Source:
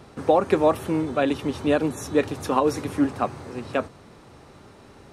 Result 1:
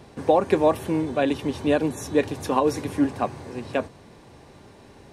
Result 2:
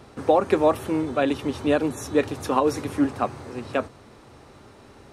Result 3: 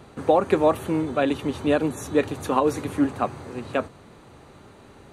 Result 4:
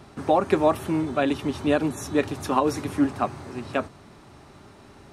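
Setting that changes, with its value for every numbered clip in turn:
band-stop, frequency: 1.3 kHz, 170 Hz, 5.3 kHz, 490 Hz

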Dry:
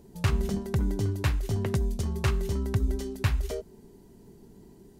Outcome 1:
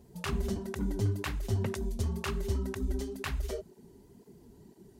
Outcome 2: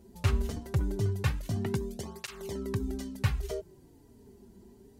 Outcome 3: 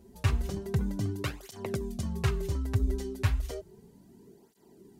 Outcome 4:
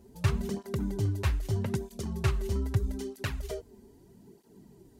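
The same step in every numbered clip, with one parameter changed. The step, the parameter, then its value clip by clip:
cancelling through-zero flanger, nulls at: 2 Hz, 0.22 Hz, 0.33 Hz, 0.79 Hz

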